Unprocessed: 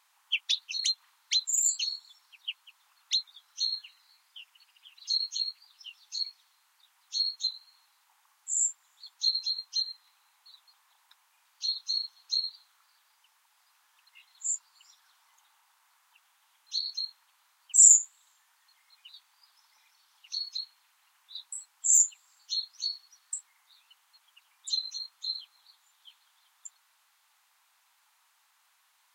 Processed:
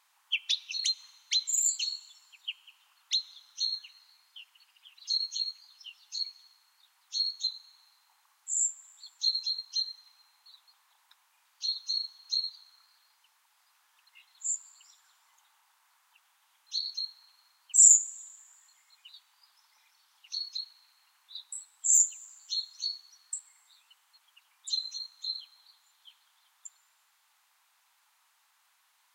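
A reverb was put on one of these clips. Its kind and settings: plate-style reverb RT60 3.1 s, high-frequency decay 0.5×, DRR 17.5 dB; trim -1 dB

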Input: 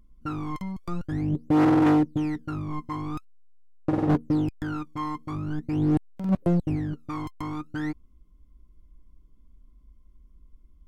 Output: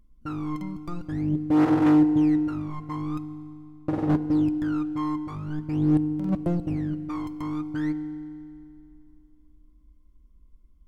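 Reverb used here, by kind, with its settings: FDN reverb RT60 2.4 s, low-frequency decay 1.1×, high-frequency decay 0.95×, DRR 13 dB; trim -2.5 dB

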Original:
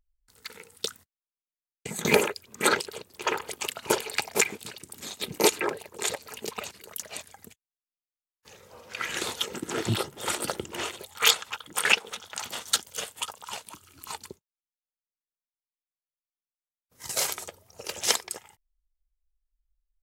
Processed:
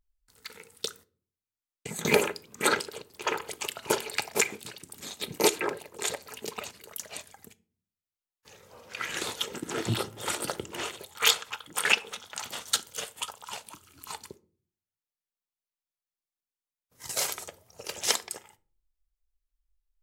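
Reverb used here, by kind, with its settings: simulated room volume 410 m³, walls furnished, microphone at 0.33 m; trim -2 dB

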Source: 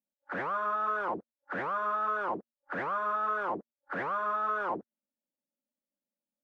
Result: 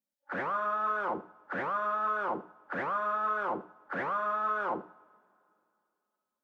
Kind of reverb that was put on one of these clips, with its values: two-slope reverb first 0.5 s, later 2.7 s, from -20 dB, DRR 11 dB

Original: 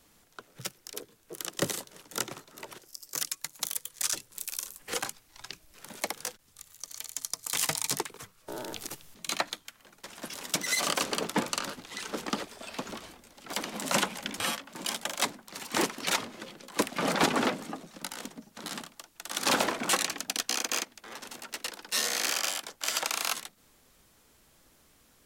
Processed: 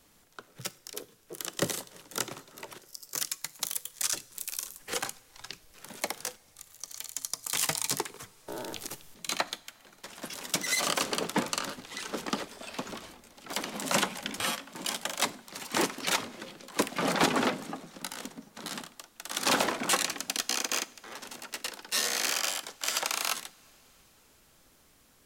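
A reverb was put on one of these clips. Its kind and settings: two-slope reverb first 0.41 s, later 4.7 s, from -19 dB, DRR 16.5 dB

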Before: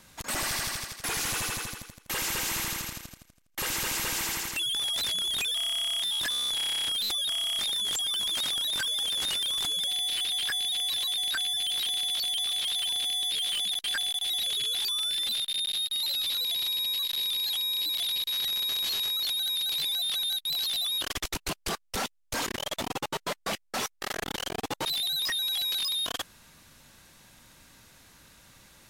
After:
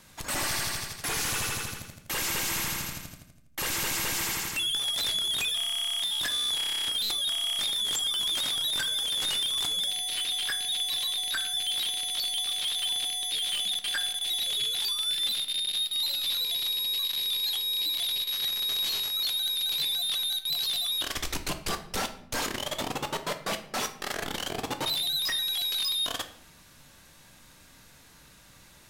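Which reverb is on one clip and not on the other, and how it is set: simulated room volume 130 m³, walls mixed, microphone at 0.39 m

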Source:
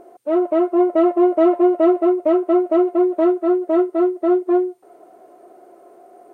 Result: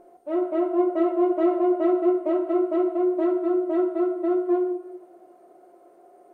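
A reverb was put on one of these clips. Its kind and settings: simulated room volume 660 m³, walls mixed, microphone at 0.91 m; trim -9 dB

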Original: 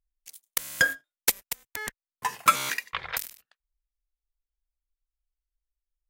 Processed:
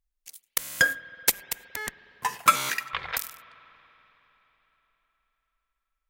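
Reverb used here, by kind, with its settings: spring tank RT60 4 s, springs 46/52 ms, chirp 75 ms, DRR 16.5 dB; trim +1 dB

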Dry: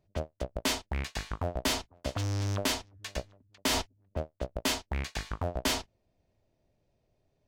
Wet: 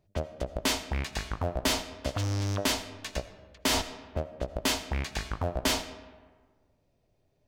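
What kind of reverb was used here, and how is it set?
algorithmic reverb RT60 1.5 s, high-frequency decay 0.55×, pre-delay 40 ms, DRR 12.5 dB; trim +2 dB

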